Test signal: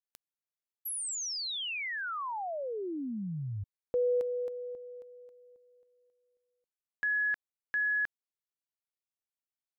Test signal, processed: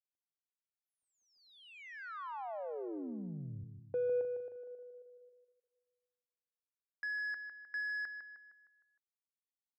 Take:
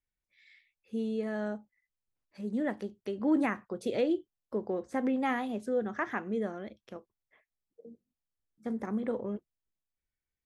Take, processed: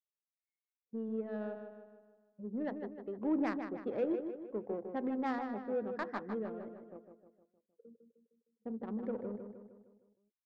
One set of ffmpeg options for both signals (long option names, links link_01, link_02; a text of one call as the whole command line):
ffmpeg -i in.wav -filter_complex "[0:a]highpass=43,afftdn=noise_reduction=17:noise_floor=-46,acrossover=split=4900[link_01][link_02];[link_02]acompressor=threshold=-46dB:ratio=4:attack=1:release=60[link_03];[link_01][link_03]amix=inputs=2:normalize=0,agate=range=-12dB:threshold=-51dB:ratio=3:release=460:detection=rms,lowshelf=frequency=140:gain=-7,adynamicsmooth=sensitivity=1.5:basefreq=910,asplit=2[link_04][link_05];[link_05]adelay=154,lowpass=frequency=3800:poles=1,volume=-7dB,asplit=2[link_06][link_07];[link_07]adelay=154,lowpass=frequency=3800:poles=1,volume=0.51,asplit=2[link_08][link_09];[link_09]adelay=154,lowpass=frequency=3800:poles=1,volume=0.51,asplit=2[link_10][link_11];[link_11]adelay=154,lowpass=frequency=3800:poles=1,volume=0.51,asplit=2[link_12][link_13];[link_13]adelay=154,lowpass=frequency=3800:poles=1,volume=0.51,asplit=2[link_14][link_15];[link_15]adelay=154,lowpass=frequency=3800:poles=1,volume=0.51[link_16];[link_04][link_06][link_08][link_10][link_12][link_14][link_16]amix=inputs=7:normalize=0,volume=-4.5dB" out.wav